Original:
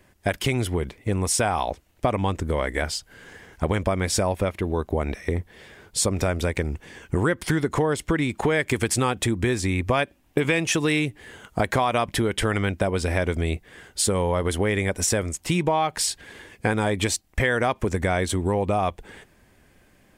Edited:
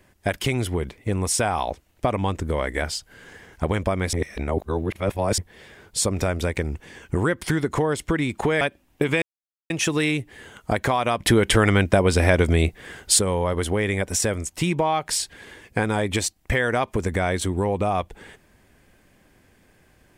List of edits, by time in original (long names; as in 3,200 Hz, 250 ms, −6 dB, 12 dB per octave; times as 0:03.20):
0:04.13–0:05.38: reverse
0:08.61–0:09.97: remove
0:10.58: splice in silence 0.48 s
0:12.14–0:14.07: clip gain +6 dB